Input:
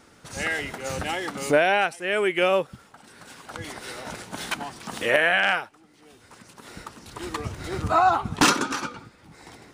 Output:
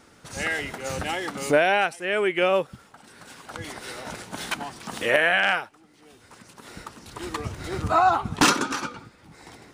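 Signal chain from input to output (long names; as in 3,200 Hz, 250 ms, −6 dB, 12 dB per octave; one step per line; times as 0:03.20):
0:02.04–0:02.54: high-shelf EQ 8,200 Hz → 5,400 Hz −7.5 dB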